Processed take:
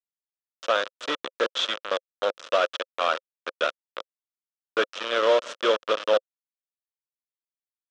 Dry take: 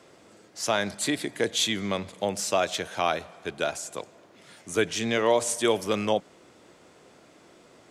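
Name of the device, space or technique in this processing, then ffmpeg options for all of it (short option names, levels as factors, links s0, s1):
hand-held game console: -af "acrusher=bits=3:mix=0:aa=0.000001,highpass=470,equalizer=f=530:t=q:w=4:g=10,equalizer=f=810:t=q:w=4:g=-8,equalizer=f=1300:t=q:w=4:g=8,equalizer=f=2100:t=q:w=4:g=-7,equalizer=f=3200:t=q:w=4:g=3,equalizer=f=4500:t=q:w=4:g=-7,lowpass=f=4700:w=0.5412,lowpass=f=4700:w=1.3066"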